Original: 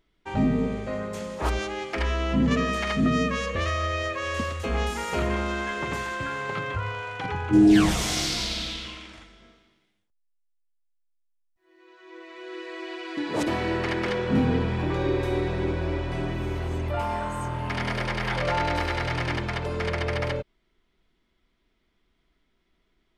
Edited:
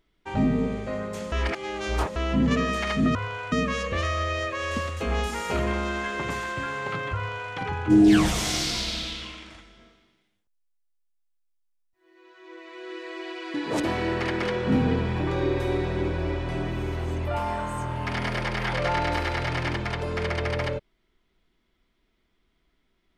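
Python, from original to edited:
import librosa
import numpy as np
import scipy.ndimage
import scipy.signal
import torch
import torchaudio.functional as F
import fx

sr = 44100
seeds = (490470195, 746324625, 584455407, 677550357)

y = fx.edit(x, sr, fx.reverse_span(start_s=1.32, length_s=0.84),
    fx.duplicate(start_s=6.79, length_s=0.37, to_s=3.15), tone=tone)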